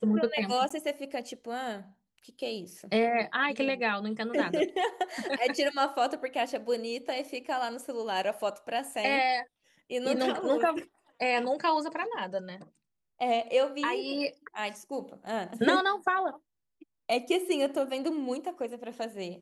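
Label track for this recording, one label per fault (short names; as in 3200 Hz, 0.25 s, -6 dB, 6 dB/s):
0.690000	0.700000	gap 15 ms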